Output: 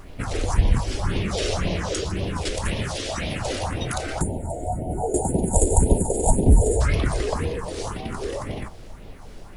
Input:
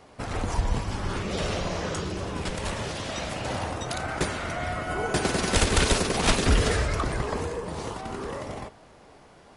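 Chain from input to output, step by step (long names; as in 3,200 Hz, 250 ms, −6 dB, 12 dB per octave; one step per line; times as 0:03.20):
all-pass phaser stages 4, 1.9 Hz, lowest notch 150–1,400 Hz
background noise brown −46 dBFS
gain on a spectral selection 0:04.21–0:06.81, 960–6,700 Hz −29 dB
level +6.5 dB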